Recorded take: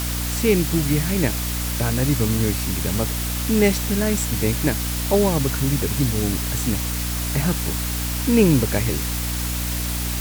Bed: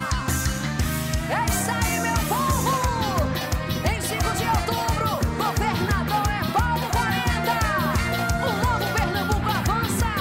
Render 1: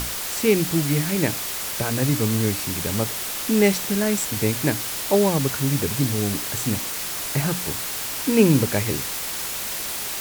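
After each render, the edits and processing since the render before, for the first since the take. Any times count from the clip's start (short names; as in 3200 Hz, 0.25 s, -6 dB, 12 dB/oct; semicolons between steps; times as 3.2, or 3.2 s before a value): notches 60/120/180/240/300 Hz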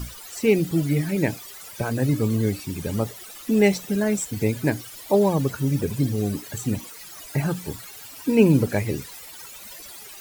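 denoiser 17 dB, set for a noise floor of -29 dBFS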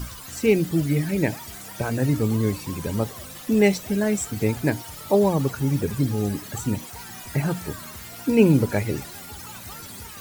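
add bed -20 dB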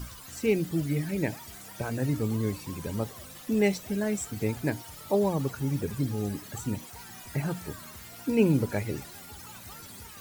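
gain -6.5 dB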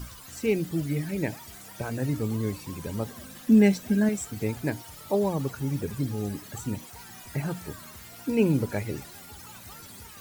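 3.07–4.09 small resonant body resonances 230/1600 Hz, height 12 dB, ringing for 55 ms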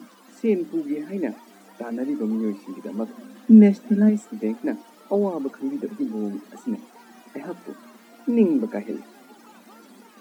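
Chebyshev high-pass 210 Hz, order 6; tilt -3.5 dB/oct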